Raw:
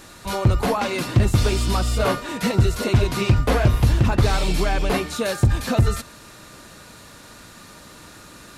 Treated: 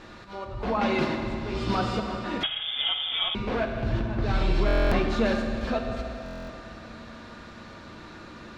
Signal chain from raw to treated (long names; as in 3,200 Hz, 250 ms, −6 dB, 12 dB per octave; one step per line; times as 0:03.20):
mains-hum notches 60/120/180/240 Hz
in parallel at −2.5 dB: compressor whose output falls as the input rises −24 dBFS, ratio −1
on the sum: volume swells 381 ms
high-frequency loss of the air 210 metres
on a send at −2.5 dB: convolution reverb RT60 3.1 s, pre-delay 5 ms
0:02.43–0:03.35: on the sum: voice inversion scrambler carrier 3,500 Hz
buffer that repeats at 0:04.66/0:06.24, samples 1,024, times 10
level −7 dB